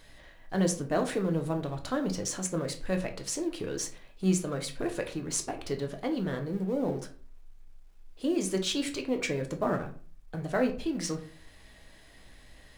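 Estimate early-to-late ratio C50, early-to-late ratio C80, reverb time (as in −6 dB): 12.0 dB, 17.0 dB, 0.40 s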